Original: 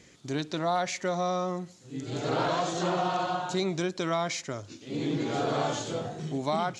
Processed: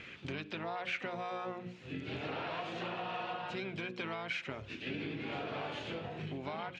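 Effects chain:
mains-hum notches 60/120/180/240/300/360/420/480/540 Hz
downward compressor 6 to 1, threshold −42 dBFS, peak gain reduction 17 dB
low-pass with resonance 2,600 Hz, resonance Q 5.4
pitch-shifted copies added −7 semitones −9 dB, +5 semitones −12 dB
level +2 dB

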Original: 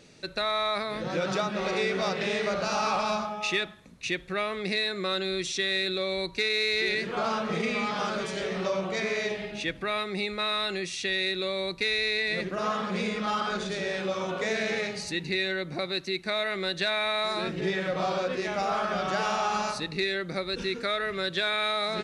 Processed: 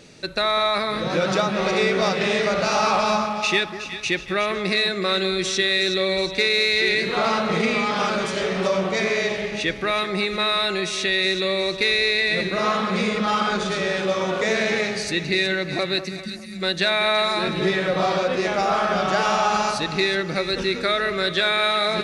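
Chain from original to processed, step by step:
time-frequency box erased 0:16.09–0:16.62, 240–4,400 Hz
echo with a time of its own for lows and highs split 1,700 Hz, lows 201 ms, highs 368 ms, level −11 dB
level +7 dB

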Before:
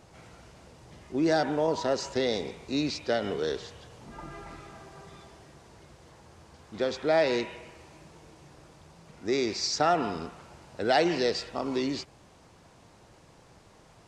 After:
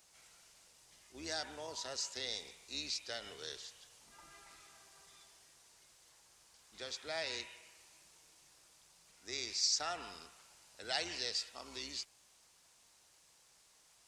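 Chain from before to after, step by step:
sub-octave generator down 2 octaves, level −2 dB
first-order pre-emphasis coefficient 0.97
level +1 dB

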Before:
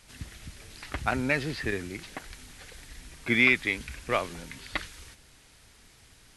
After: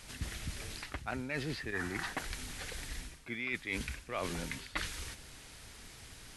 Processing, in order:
gain on a spectral selection 0:01.74–0:02.13, 680–2,000 Hz +12 dB
reversed playback
downward compressor 20 to 1, threshold −38 dBFS, peak gain reduction 23 dB
reversed playback
level +4.5 dB

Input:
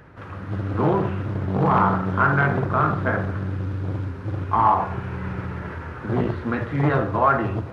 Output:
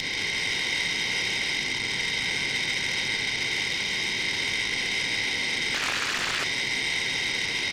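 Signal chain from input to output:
compressor on every frequency bin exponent 0.2
Butterworth high-pass 2,000 Hz 96 dB per octave
high-shelf EQ 3,900 Hz −9 dB
brickwall limiter −32 dBFS, peak gain reduction 9.5 dB
harmonic generator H 2 −9 dB, 4 −10 dB, 7 −34 dB, 8 −31 dB, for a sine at −32 dBFS
single-tap delay 136 ms −4.5 dB
convolution reverb RT60 1.1 s, pre-delay 3 ms, DRR 10.5 dB
0:05.74–0:06.44: highs frequency-modulated by the lows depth 0.77 ms
level +7.5 dB

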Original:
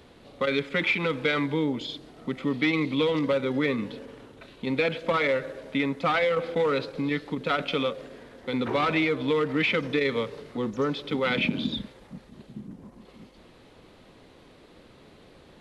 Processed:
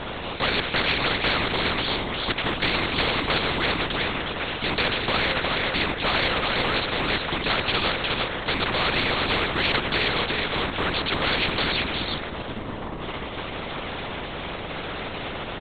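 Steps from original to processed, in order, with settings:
single-tap delay 361 ms −7.5 dB
linear-prediction vocoder at 8 kHz whisper
every bin compressed towards the loudest bin 4 to 1
level +2 dB

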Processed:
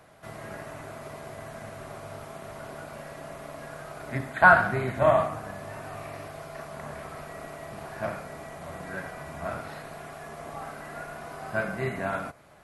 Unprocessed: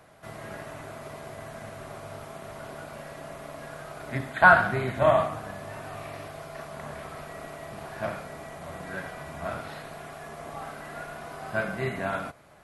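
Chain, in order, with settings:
dynamic equaliser 3,400 Hz, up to −5 dB, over −55 dBFS, Q 2.2

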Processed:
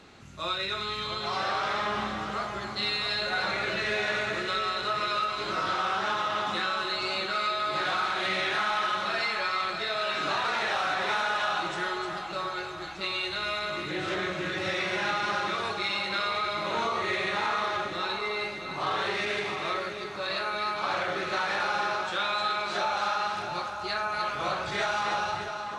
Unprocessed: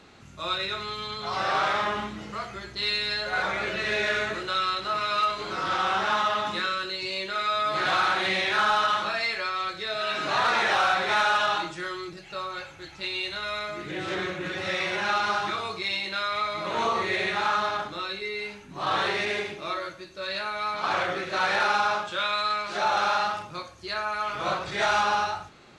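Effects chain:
downward compressor, threshold −26 dBFS, peak gain reduction 7 dB
on a send: echo with a time of its own for lows and highs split 1,400 Hz, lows 662 ms, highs 304 ms, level −6.5 dB

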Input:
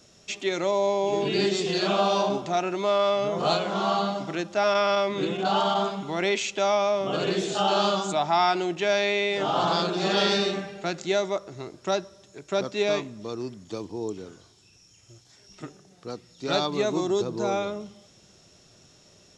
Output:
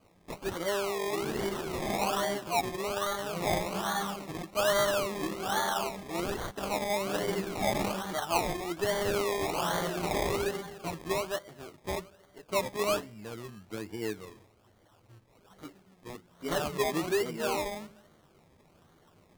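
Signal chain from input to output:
multi-voice chorus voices 2, 0.14 Hz, delay 11 ms, depth 2 ms
sample-and-hold swept by an LFO 24×, swing 60% 1.2 Hz
level −3.5 dB

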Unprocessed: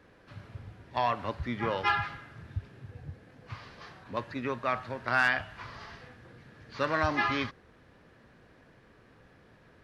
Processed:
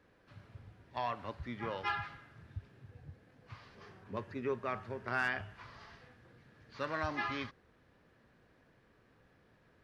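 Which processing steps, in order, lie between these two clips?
0:03.75–0:05.55: thirty-one-band graphic EQ 100 Hz +10 dB, 200 Hz +9 dB, 400 Hz +11 dB, 4,000 Hz −6 dB
level −8.5 dB

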